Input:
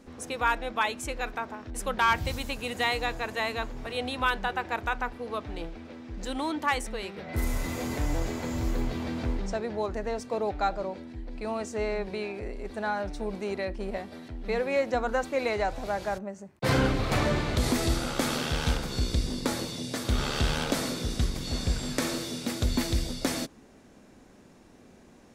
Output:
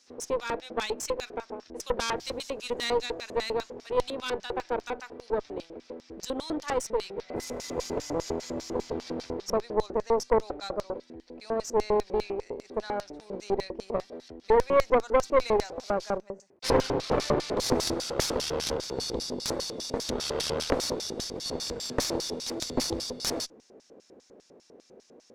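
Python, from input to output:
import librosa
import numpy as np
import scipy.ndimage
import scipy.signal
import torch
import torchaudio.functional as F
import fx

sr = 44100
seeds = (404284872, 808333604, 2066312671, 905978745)

y = fx.filter_lfo_bandpass(x, sr, shape='square', hz=5.0, low_hz=460.0, high_hz=5400.0, q=3.1)
y = fx.cheby_harmonics(y, sr, harmonics=(5, 8), levels_db=(-16, -12), full_scale_db=-15.5)
y = y * librosa.db_to_amplitude(5.0)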